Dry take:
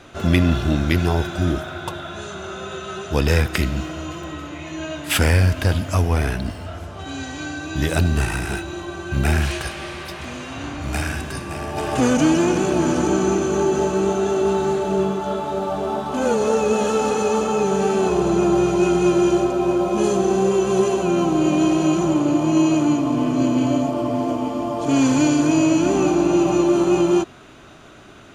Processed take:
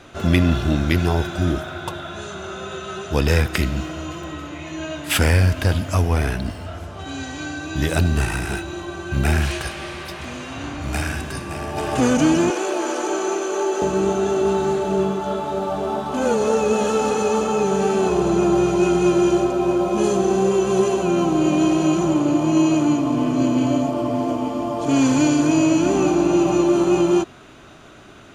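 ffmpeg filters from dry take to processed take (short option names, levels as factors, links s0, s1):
-filter_complex "[0:a]asettb=1/sr,asplit=3[s0][s1][s2];[s0]atrim=end=12.504[s3];[s1]atrim=start=12.5:end=13.82,asetpts=PTS-STARTPTS,afade=t=in:d=0.004:c=qsin,afade=t=out:st=1.316:d=0.004:c=qsin,highpass=f=380:w=0.5412,highpass=f=380:w=1.3066[s4];[s2]atrim=start=13.816[s5];[s3][s4]acrossfade=d=0.004:c1=hsin:c2=qsin[s6];[s6][s5]acrossfade=d=0.004:c1=qsin:c2=hsin"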